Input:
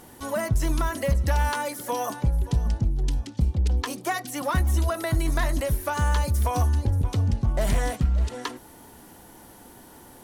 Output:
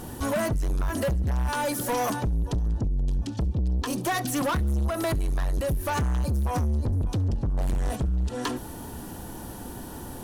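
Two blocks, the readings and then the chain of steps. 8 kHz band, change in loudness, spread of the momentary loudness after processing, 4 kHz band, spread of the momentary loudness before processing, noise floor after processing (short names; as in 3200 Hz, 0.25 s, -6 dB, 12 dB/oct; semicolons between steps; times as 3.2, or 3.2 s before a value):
-0.5 dB, -1.5 dB, 12 LU, -1.0 dB, 6 LU, -39 dBFS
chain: low shelf 230 Hz +10 dB; notch 2100 Hz, Q 6.5; compressor 6:1, threshold -21 dBFS, peak gain reduction 12.5 dB; soft clip -29 dBFS, distortion -8 dB; on a send: thin delay 68 ms, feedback 58%, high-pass 2200 Hz, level -23.5 dB; on the sum: gain +6.5 dB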